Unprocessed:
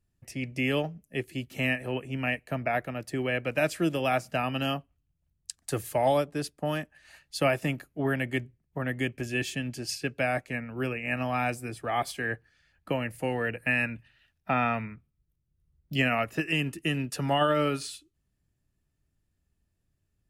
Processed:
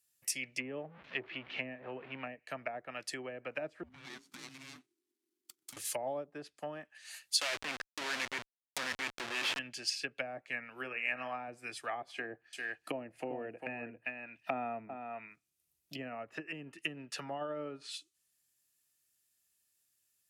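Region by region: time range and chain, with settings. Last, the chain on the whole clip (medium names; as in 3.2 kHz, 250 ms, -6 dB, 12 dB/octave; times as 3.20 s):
0.60–2.32 s: jump at every zero crossing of -37.5 dBFS + low-pass 3.1 kHz 24 dB/octave
3.83–5.77 s: median filter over 41 samples + compression, threshold -35 dBFS + frequency shift -400 Hz
7.41–9.59 s: band-pass 200–5400 Hz + Schmitt trigger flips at -39.5 dBFS
10.69–11.48 s: bass shelf 110 Hz -8 dB + de-hum 80.05 Hz, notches 32
12.13–15.97 s: small resonant body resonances 320/680/2500 Hz, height 8 dB, ringing for 20 ms + delay 398 ms -7.5 dB
whole clip: low-pass that closes with the level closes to 520 Hz, closed at -24.5 dBFS; differentiator; trim +12.5 dB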